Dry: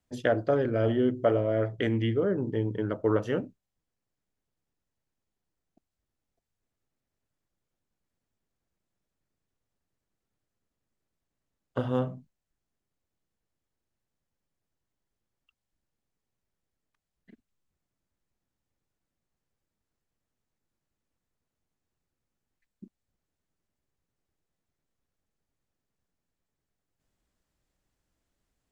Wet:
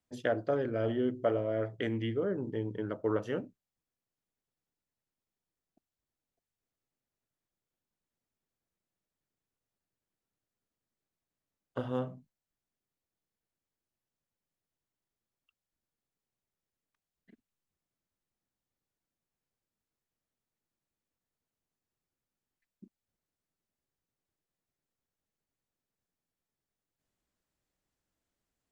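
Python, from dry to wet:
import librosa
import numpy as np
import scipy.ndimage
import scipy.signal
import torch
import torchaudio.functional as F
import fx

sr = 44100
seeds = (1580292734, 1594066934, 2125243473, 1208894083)

y = fx.low_shelf(x, sr, hz=87.0, db=-8.0)
y = F.gain(torch.from_numpy(y), -5.0).numpy()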